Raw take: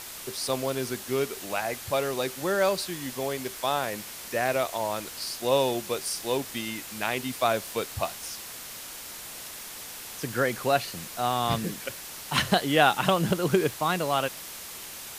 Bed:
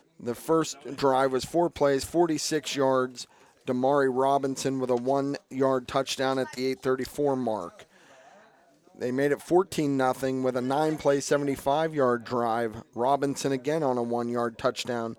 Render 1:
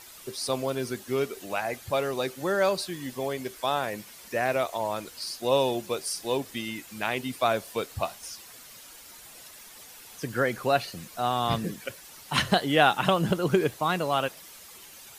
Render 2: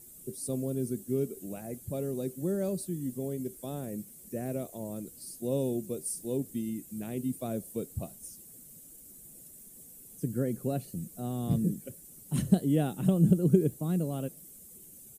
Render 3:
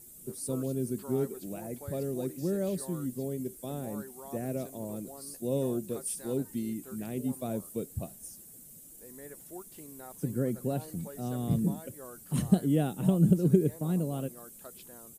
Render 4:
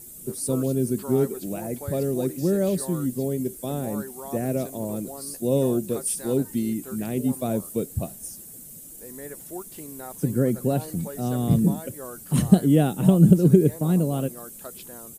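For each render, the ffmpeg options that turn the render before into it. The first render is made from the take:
-af "afftdn=nr=10:nf=-41"
-af "firequalizer=gain_entry='entry(110,0);entry(160,6);entry(930,-25);entry(4900,-20);entry(8100,-1)':delay=0.05:min_phase=1"
-filter_complex "[1:a]volume=-23.5dB[a];[0:a][a]amix=inputs=2:normalize=0"
-af "volume=8.5dB,alimiter=limit=-3dB:level=0:latency=1"

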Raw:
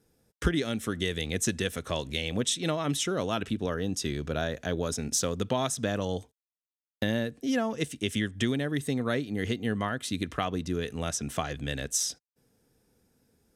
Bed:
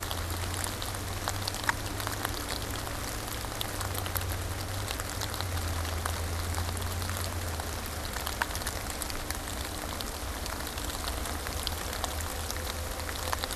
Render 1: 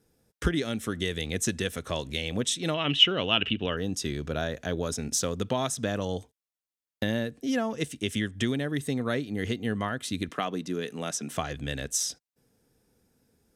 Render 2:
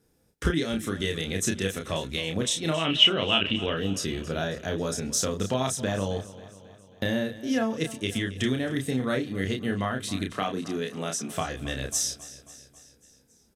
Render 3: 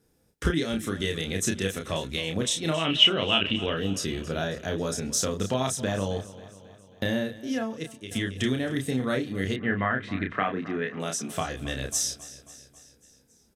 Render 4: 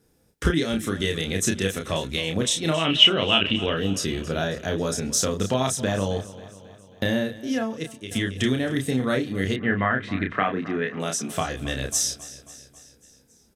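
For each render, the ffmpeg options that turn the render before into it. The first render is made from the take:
-filter_complex "[0:a]asettb=1/sr,asplit=3[a][b][c];[a]atrim=end=2.744[d];[b]atrim=start=2.74:end=3.77,asetpts=PTS-STARTPTS,afade=t=in:d=0.004:c=qsin,afade=t=out:st=1.026:d=0.004:c=qsin,lowpass=f=2.9k:t=q:w=12[e];[c]atrim=start=3.766[f];[d][e]acrossfade=d=0.004:c1=hsin:c2=qsin[g];[g][f]acrossfade=d=0.004:c1=qsin:c2=hsin,asettb=1/sr,asplit=3[h][i][j];[h]atrim=end=10.294[k];[i]atrim=start=10.29:end=11.33,asetpts=PTS-STARTPTS,afade=t=in:d=0.004:c=qsin,afade=t=out:st=1.036:d=0.004:c=qsin,highpass=f=160:w=0.5412,highpass=f=160:w=1.3066[l];[j]atrim=start=11.326[m];[k][l]acrossfade=d=0.004:c1=hsin:c2=qsin[n];[n][m]acrossfade=d=0.004:c1=qsin:c2=hsin"
-filter_complex "[0:a]asplit=2[a][b];[b]adelay=31,volume=-4dB[c];[a][c]amix=inputs=2:normalize=0,aecho=1:1:271|542|813|1084|1355:0.141|0.0819|0.0475|0.0276|0.016"
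-filter_complex "[0:a]asettb=1/sr,asplit=3[a][b][c];[a]atrim=end=9.564[d];[b]atrim=start=9.56:end=11,asetpts=PTS-STARTPTS,afade=t=in:d=0.004:c=qsin,afade=t=out:st=1.436:d=0.004:c=qsin,lowpass=f=1.9k:t=q:w=2.6[e];[c]atrim=start=10.996[f];[d][e]acrossfade=d=0.004:c1=hsin:c2=qsin[g];[g][f]acrossfade=d=0.004:c1=qsin:c2=hsin,asplit=2[h][i];[h]atrim=end=8.11,asetpts=PTS-STARTPTS,afade=t=out:st=7.14:d=0.97:silence=0.251189[j];[i]atrim=start=8.11,asetpts=PTS-STARTPTS,afade=t=in:d=0.004:c=hsin:silence=0.251189[k];[j][k]concat=n=2:v=0:a=1"
-af "volume=3.5dB"

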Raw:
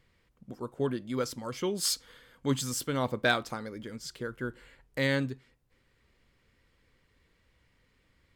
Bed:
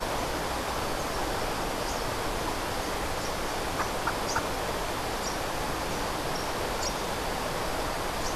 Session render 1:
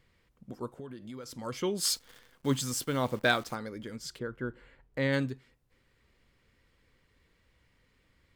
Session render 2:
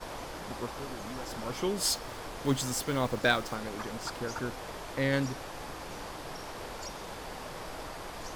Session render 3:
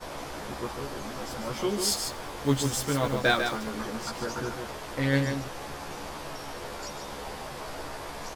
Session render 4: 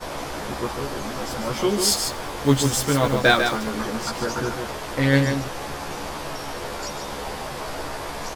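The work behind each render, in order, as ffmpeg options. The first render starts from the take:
-filter_complex "[0:a]asettb=1/sr,asplit=3[a][b][c];[a]atrim=end=0.694[d];[b]atrim=start=0.69:end=1.39,asetpts=PTS-STARTPTS,afade=t=in:d=0.004:c=qsin,afade=t=out:st=0.696:d=0.004:c=qsin,acompressor=threshold=-40dB:ratio=6:attack=3.2:release=140:knee=1:detection=peak[e];[c]atrim=start=1.386[f];[d][e]acrossfade=d=0.004:c1=hsin:c2=qsin[g];[g][f]acrossfade=d=0.004:c1=qsin:c2=hsin,asettb=1/sr,asplit=3[h][i][j];[h]atrim=end=1.894[k];[i]atrim=start=1.89:end=3.55,asetpts=PTS-STARTPTS,afade=t=in:d=0.004:c=qsin,afade=t=out:st=1.656:d=0.004:c=qsin,acrusher=bits=9:dc=4:mix=0:aa=0.000001[l];[j]atrim=start=3.546[m];[k][l]acrossfade=d=0.004:c1=hsin:c2=qsin[n];[n][m]acrossfade=d=0.004:c1=qsin:c2=hsin,asplit=3[o][p][q];[o]afade=t=out:st=4.18:d=0.02[r];[p]lowpass=f=1.8k:p=1,afade=t=in:st=4.18:d=0.02,afade=t=out:st=5.12:d=0.02[s];[q]afade=t=in:st=5.12:d=0.02[t];[r][s][t]amix=inputs=3:normalize=0"
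-filter_complex "[1:a]volume=-10.5dB[a];[0:a][a]amix=inputs=2:normalize=0"
-filter_complex "[0:a]asplit=2[a][b];[b]adelay=14,volume=-2dB[c];[a][c]amix=inputs=2:normalize=0,aecho=1:1:147:0.473"
-af "volume=7dB"

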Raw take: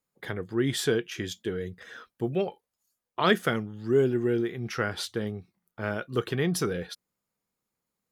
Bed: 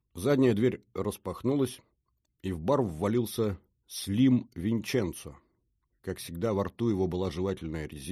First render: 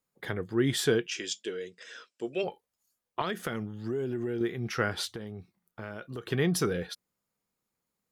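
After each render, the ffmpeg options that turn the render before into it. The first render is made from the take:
-filter_complex "[0:a]asplit=3[a][b][c];[a]afade=t=out:st=1.06:d=0.02[d];[b]highpass=410,equalizer=f=790:t=q:w=4:g=-9,equalizer=f=1.2k:t=q:w=4:g=-6,equalizer=f=1.8k:t=q:w=4:g=-3,equalizer=f=2.7k:t=q:w=4:g=6,equalizer=f=5.2k:t=q:w=4:g=8,equalizer=f=7.5k:t=q:w=4:g=9,lowpass=f=9k:w=0.5412,lowpass=f=9k:w=1.3066,afade=t=in:st=1.06:d=0.02,afade=t=out:st=2.43:d=0.02[e];[c]afade=t=in:st=2.43:d=0.02[f];[d][e][f]amix=inputs=3:normalize=0,asettb=1/sr,asplit=3[g][h][i];[g]atrim=end=3.214[j];[h]atrim=start=3.21:end=4.41,asetpts=PTS-STARTPTS,afade=t=in:d=0.004:c=qsin,afade=t=out:st=1.196:d=0.004:c=qsin,acompressor=threshold=-28dB:ratio=8:attack=3.2:release=140:knee=1:detection=peak[k];[i]atrim=start=4.406[l];[j][k]acrossfade=d=0.004:c1=hsin:c2=qsin[m];[m][l]acrossfade=d=0.004:c1=qsin:c2=hsin,asettb=1/sr,asplit=3[n][o][p];[n]atrim=end=5.104[q];[o]atrim=start=5.1:end=6.32,asetpts=PTS-STARTPTS,afade=t=in:d=0.004:c=qsin,afade=t=out:st=1.216:d=0.004:c=qsin,acompressor=threshold=-35dB:ratio=6:attack=3.2:release=140:knee=1:detection=peak[r];[p]atrim=start=6.316[s];[q][r]acrossfade=d=0.004:c1=hsin:c2=qsin[t];[t][s]acrossfade=d=0.004:c1=qsin:c2=hsin"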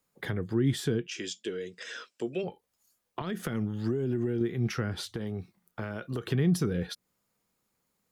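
-filter_complex "[0:a]asplit=2[a][b];[b]alimiter=limit=-21.5dB:level=0:latency=1:release=207,volume=1dB[c];[a][c]amix=inputs=2:normalize=0,acrossover=split=290[d][e];[e]acompressor=threshold=-36dB:ratio=6[f];[d][f]amix=inputs=2:normalize=0"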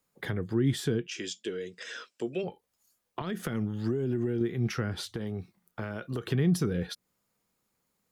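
-af anull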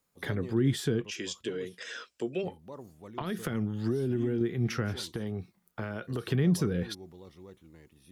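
-filter_complex "[1:a]volume=-19dB[a];[0:a][a]amix=inputs=2:normalize=0"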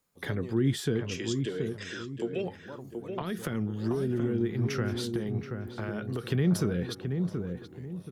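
-filter_complex "[0:a]asplit=2[a][b];[b]adelay=728,lowpass=f=1.2k:p=1,volume=-5dB,asplit=2[c][d];[d]adelay=728,lowpass=f=1.2k:p=1,volume=0.36,asplit=2[e][f];[f]adelay=728,lowpass=f=1.2k:p=1,volume=0.36,asplit=2[g][h];[h]adelay=728,lowpass=f=1.2k:p=1,volume=0.36[i];[a][c][e][g][i]amix=inputs=5:normalize=0"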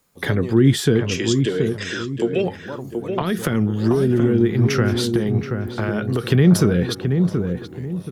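-af "volume=12dB"

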